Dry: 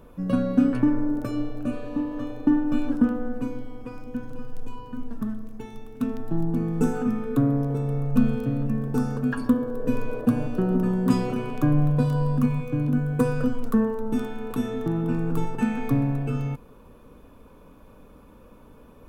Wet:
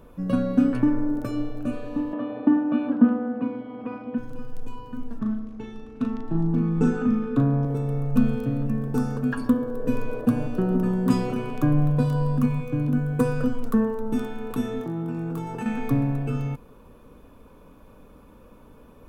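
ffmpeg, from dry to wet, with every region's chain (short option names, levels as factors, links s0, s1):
-filter_complex "[0:a]asettb=1/sr,asplit=3[s0][s1][s2];[s0]atrim=end=2.134[s3];[s1]atrim=start=2.13:end=4.18,asetpts=PTS-STARTPTS,afade=t=in:d=0.004:c=qsin,afade=t=out:st=2.046:d=0.004:c=qsin,acompressor=mode=upward:threshold=0.0562:ratio=2.5:attack=3.2:release=140:knee=2.83:detection=peak,highpass=190,equalizer=f=220:t=q:w=4:g=8,equalizer=f=660:t=q:w=4:g=7,equalizer=f=1100:t=q:w=4:g=4,lowpass=f=3300:w=0.5412,lowpass=f=3300:w=1.3066[s4];[s2]atrim=start=4.176[s5];[s3][s4]acrossfade=d=0.004:c1=hsin:c2=qsin[s6];[s6][s5]acrossfade=d=0.004:c1=qsin:c2=hsin,asettb=1/sr,asplit=3[s7][s8][s9];[s7]atrim=end=5.194[s10];[s8]atrim=start=5.19:end=7.65,asetpts=PTS-STARTPTS,afade=t=in:d=0.004:c=qsin,afade=t=out:st=2.456:d=0.004:c=qsin,lowpass=4800,asplit=2[s11][s12];[s12]adelay=37,volume=0.631[s13];[s11][s13]amix=inputs=2:normalize=0,atrim=end_sample=108486[s14];[s9]atrim=start=7.646[s15];[s10][s14]acrossfade=d=0.004:c1=hsin:c2=qsin[s16];[s16][s15]acrossfade=d=0.004:c1=qsin:c2=hsin,asettb=1/sr,asplit=3[s17][s18][s19];[s17]atrim=end=14.814[s20];[s18]atrim=start=14.81:end=15.66,asetpts=PTS-STARTPTS,afade=t=in:d=0.004:c=qsin,afade=t=out:st=0.846:d=0.004:c=qsin,highpass=f=120:p=1,acompressor=threshold=0.0355:ratio=5:attack=3.2:release=140:knee=1:detection=peak,asplit=2[s21][s22];[s22]adelay=24,volume=0.501[s23];[s21][s23]amix=inputs=2:normalize=0,atrim=end_sample=37485[s24];[s19]atrim=start=15.656[s25];[s20][s24]acrossfade=d=0.004:c1=hsin:c2=qsin[s26];[s26][s25]acrossfade=d=0.004:c1=qsin:c2=hsin"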